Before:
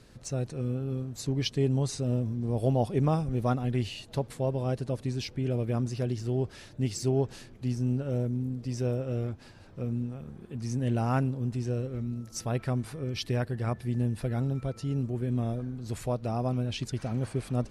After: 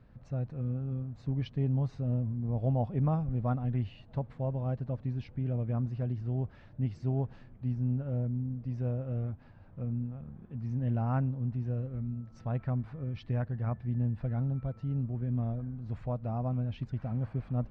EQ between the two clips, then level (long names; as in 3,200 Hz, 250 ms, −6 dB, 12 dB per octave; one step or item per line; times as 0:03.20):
head-to-tape spacing loss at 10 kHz 38 dB
parametric band 380 Hz −10.5 dB 0.82 octaves
high-shelf EQ 3,000 Hz −8.5 dB
0.0 dB